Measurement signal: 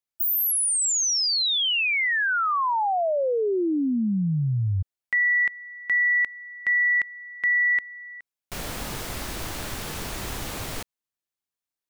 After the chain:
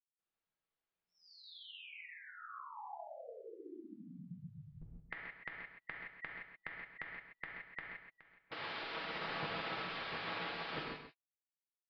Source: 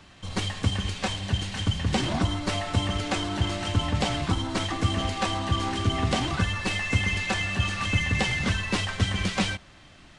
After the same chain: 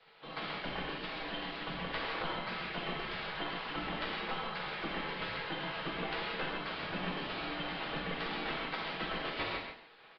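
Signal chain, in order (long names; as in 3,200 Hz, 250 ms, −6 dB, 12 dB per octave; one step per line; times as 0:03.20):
gate on every frequency bin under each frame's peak −15 dB weak
comb filter 6.2 ms, depth 34%
in parallel at −3 dB: downward compressor, threshold −43 dBFS
on the sum: high-frequency loss of the air 320 metres
on a send: single-tap delay 129 ms −8.5 dB
on the sum: reverb whose tail is shaped and stops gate 190 ms flat, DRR −1.5 dB
downsampling to 11,025 Hz
level −5 dB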